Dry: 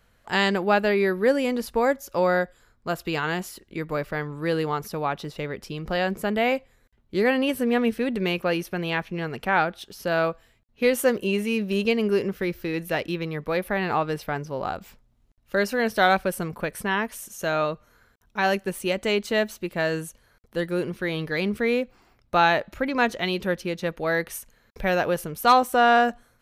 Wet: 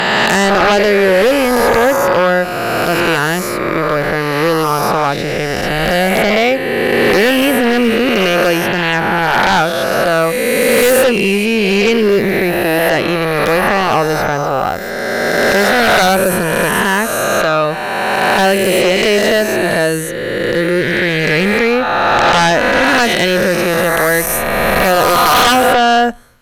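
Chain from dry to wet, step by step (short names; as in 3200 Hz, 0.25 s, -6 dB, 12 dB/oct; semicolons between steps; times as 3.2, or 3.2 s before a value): spectral swells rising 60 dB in 2.79 s; 22.84–24.92 high shelf 12000 Hz +9 dB; sine folder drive 12 dB, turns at -0.5 dBFS; gain -5.5 dB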